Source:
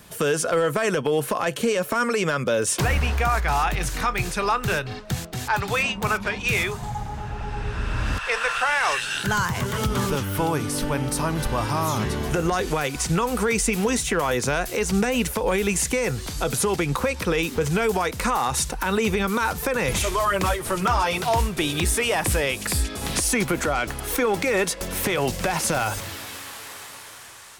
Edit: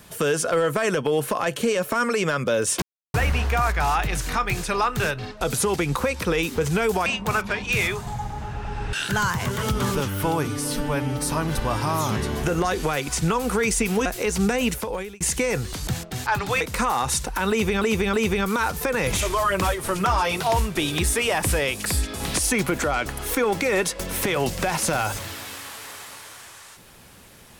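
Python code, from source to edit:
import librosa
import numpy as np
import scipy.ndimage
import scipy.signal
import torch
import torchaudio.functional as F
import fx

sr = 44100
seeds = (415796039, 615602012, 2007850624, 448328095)

y = fx.edit(x, sr, fx.insert_silence(at_s=2.82, length_s=0.32),
    fx.swap(start_s=5.09, length_s=0.73, other_s=16.41, other_length_s=1.65),
    fx.cut(start_s=7.69, length_s=1.39),
    fx.stretch_span(start_s=10.62, length_s=0.55, factor=1.5),
    fx.cut(start_s=13.93, length_s=0.66),
    fx.fade_out_span(start_s=15.2, length_s=0.54),
    fx.repeat(start_s=18.95, length_s=0.32, count=3), tone=tone)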